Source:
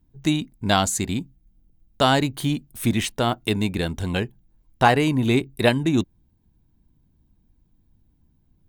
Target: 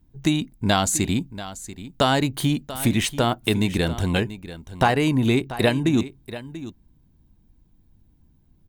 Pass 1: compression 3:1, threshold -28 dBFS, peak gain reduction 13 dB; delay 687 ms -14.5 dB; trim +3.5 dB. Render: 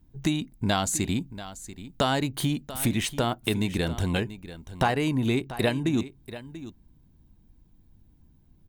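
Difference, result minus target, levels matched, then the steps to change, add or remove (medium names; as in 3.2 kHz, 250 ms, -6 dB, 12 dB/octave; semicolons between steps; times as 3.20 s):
compression: peak gain reduction +5.5 dB
change: compression 3:1, threshold -20 dBFS, peak gain reduction 7.5 dB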